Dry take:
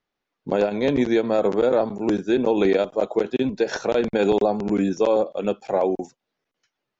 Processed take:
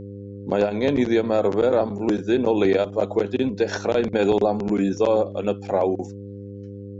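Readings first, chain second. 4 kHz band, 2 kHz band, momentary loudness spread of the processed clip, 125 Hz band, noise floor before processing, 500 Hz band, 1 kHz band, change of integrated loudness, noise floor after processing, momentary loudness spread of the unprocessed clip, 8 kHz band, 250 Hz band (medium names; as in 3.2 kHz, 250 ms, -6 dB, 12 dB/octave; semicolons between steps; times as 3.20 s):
0.0 dB, 0.0 dB, 16 LU, +3.5 dB, -83 dBFS, 0.0 dB, 0.0 dB, 0.0 dB, -36 dBFS, 5 LU, no reading, 0.0 dB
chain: mains buzz 100 Hz, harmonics 5, -36 dBFS -3 dB/octave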